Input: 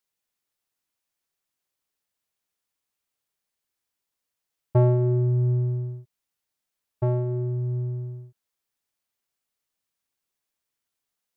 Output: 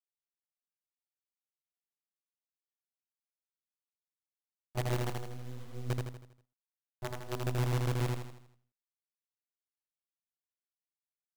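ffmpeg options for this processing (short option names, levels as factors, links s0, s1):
-af "agate=range=0.398:threshold=0.0251:ratio=16:detection=peak,acontrast=81,alimiter=limit=0.237:level=0:latency=1,areverse,acompressor=threshold=0.0355:ratio=8,areverse,tremolo=f=7.1:d=0.79,flanger=delay=15:depth=6:speed=0.64,acrusher=bits=6:dc=4:mix=0:aa=0.000001,aecho=1:1:80|160|240|320|400|480:0.708|0.326|0.15|0.0689|0.0317|0.0146"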